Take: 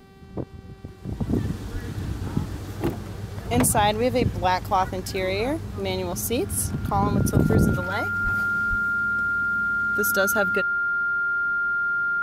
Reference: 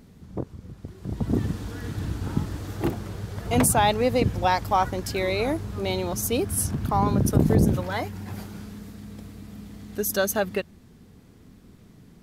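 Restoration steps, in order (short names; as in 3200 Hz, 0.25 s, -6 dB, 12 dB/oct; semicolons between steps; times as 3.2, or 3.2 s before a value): de-hum 387.9 Hz, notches 13; notch 1400 Hz, Q 30; 1.72–1.84 HPF 140 Hz 24 dB/oct; 8.23–8.35 HPF 140 Hz 24 dB/oct; 8.69–8.81 HPF 140 Hz 24 dB/oct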